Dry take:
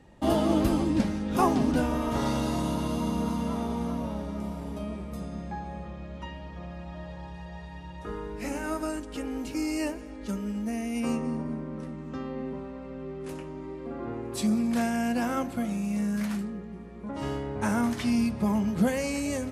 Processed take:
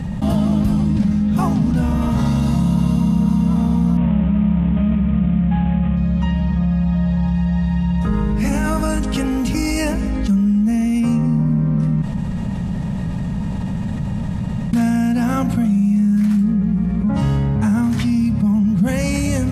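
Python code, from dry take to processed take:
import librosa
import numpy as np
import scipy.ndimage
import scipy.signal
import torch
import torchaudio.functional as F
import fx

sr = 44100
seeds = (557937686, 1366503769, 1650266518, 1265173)

y = fx.cvsd(x, sr, bps=16000, at=(3.97, 5.97))
y = fx.low_shelf(y, sr, hz=180.0, db=-7.0, at=(9.03, 9.49))
y = fx.edit(y, sr, fx.room_tone_fill(start_s=12.02, length_s=2.71), tone=tone)
y = fx.rider(y, sr, range_db=4, speed_s=0.5)
y = fx.low_shelf_res(y, sr, hz=250.0, db=9.5, q=3.0)
y = fx.env_flatten(y, sr, amount_pct=70)
y = F.gain(torch.from_numpy(y), -4.0).numpy()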